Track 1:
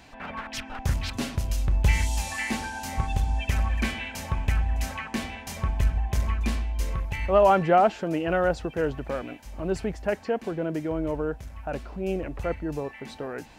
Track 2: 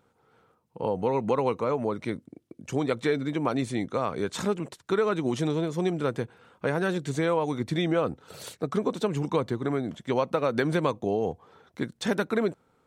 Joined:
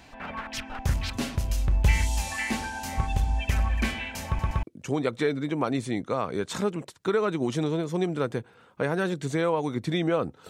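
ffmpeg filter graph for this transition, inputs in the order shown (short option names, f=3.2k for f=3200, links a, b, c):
-filter_complex "[0:a]apad=whole_dur=10.49,atrim=end=10.49,asplit=3[a][b][c];[a]atrim=end=4.392[d];[b]atrim=start=4.268:end=4.392[e];[c]atrim=start=4.268:end=4.392[f];[1:a]atrim=start=2.468:end=8.33[g];[d][e]acrossfade=d=0.004:c1=hsin:c2=hsin[h];[h][f]acrossfade=d=0.004:c1=hsin:c2=hsin[i];[i][g]acrossfade=d=0.004:c1=hsin:c2=hsin"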